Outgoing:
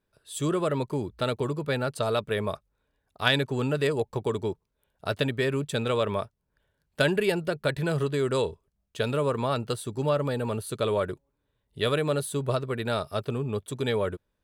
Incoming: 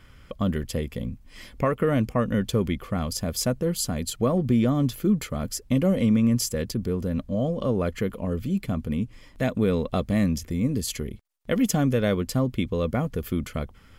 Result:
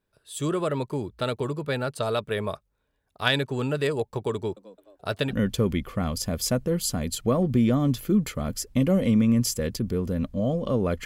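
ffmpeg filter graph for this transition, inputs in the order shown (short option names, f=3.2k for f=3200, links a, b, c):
-filter_complex "[0:a]asettb=1/sr,asplit=3[a][b][c];[a]atrim=end=4.354[d];[b]atrim=start=4.35:end=5.34,asetpts=PTS-STARTPTS,afade=t=in:d=0.004:c=qsin,afade=t=out:st=0.986:d=0.004:c=qsin,asplit=5[e][f][g][h][i];[f]adelay=214,afreqshift=97,volume=-18dB[j];[g]adelay=428,afreqshift=194,volume=-24.9dB[k];[h]adelay=642,afreqshift=291,volume=-31.9dB[l];[i]adelay=856,afreqshift=388,volume=-38.8dB[m];[e][j][k][l][m]amix=inputs=5:normalize=0,atrim=end_sample=43659[n];[c]atrim=start=5.336[o];[d][n]acrossfade=d=0.004:c1=hsin:c2=qsin[p];[p][o]acrossfade=d=0.004:c1=qsin:c2=hsin,apad=whole_dur=11.05,atrim=end=11.05,atrim=end=5.34,asetpts=PTS-STARTPTS[q];[1:a]atrim=start=2.23:end=8,asetpts=PTS-STARTPTS[r];[q][r]acrossfade=d=0.06:c1=tri:c2=tri"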